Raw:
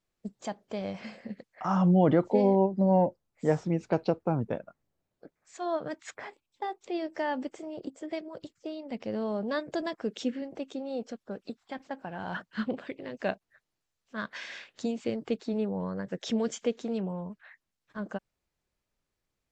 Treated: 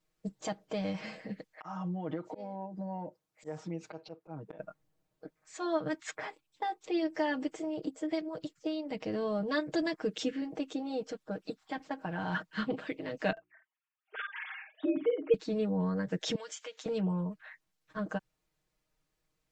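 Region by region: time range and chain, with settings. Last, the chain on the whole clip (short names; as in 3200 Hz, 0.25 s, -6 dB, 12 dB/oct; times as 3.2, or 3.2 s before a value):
1.54–4.59 HPF 250 Hz 6 dB/oct + auto swell 0.33 s + compressor 3:1, threshold -41 dBFS
13.32–15.34 sine-wave speech + notches 60/120/180/240/300/360 Hz + doubler 50 ms -8 dB
16.35–16.86 HPF 1100 Hz + compressor 3:1, threshold -43 dBFS
whole clip: comb 6.4 ms, depth 86%; dynamic EQ 640 Hz, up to -5 dB, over -37 dBFS, Q 1.1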